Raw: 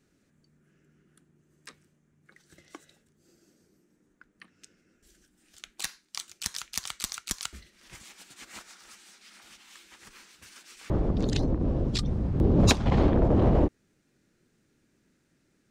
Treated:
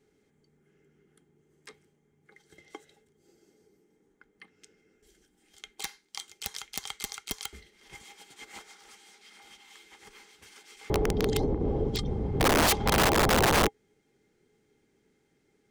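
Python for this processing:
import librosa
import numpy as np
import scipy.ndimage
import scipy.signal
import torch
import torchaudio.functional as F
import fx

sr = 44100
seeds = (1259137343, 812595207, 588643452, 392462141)

y = fx.small_body(x, sr, hz=(430.0, 810.0, 2100.0, 3200.0), ring_ms=60, db=15)
y = (np.mod(10.0 ** (13.5 / 20.0) * y + 1.0, 2.0) - 1.0) / 10.0 ** (13.5 / 20.0)
y = y * 10.0 ** (-3.5 / 20.0)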